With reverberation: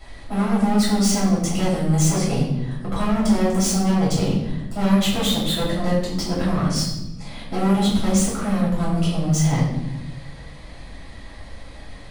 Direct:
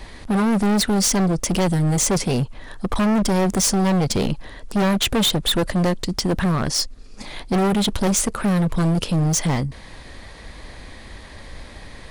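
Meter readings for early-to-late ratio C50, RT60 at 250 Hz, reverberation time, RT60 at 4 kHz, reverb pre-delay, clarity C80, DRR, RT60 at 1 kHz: 2.5 dB, 1.5 s, 1.0 s, 0.75 s, 3 ms, 5.5 dB, -8.0 dB, 0.85 s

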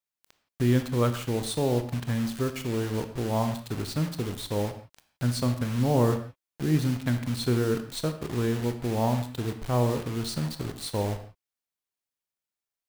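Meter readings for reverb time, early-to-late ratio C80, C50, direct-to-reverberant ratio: not exponential, 12.5 dB, 10.0 dB, 8.0 dB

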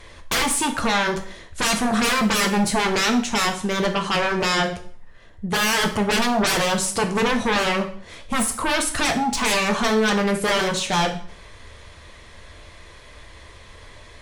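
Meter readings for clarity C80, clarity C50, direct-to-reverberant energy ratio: 15.0 dB, 10.5 dB, 4.0 dB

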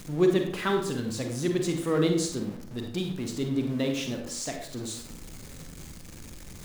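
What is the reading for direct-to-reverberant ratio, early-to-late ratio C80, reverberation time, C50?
3.5 dB, 9.0 dB, 0.60 s, 5.5 dB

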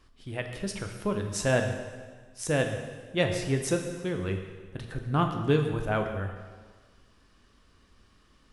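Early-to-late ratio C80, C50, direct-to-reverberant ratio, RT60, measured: 8.0 dB, 6.5 dB, 4.5 dB, 1.5 s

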